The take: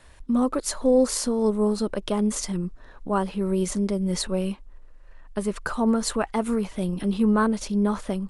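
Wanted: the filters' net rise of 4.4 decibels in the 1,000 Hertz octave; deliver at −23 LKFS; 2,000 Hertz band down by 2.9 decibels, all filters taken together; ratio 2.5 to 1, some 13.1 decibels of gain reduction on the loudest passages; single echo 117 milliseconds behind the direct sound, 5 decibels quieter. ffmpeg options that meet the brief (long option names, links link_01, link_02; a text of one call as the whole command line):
ffmpeg -i in.wav -af "equalizer=frequency=1000:width_type=o:gain=7.5,equalizer=frequency=2000:width_type=o:gain=-9,acompressor=threshold=-34dB:ratio=2.5,aecho=1:1:117:0.562,volume=10dB" out.wav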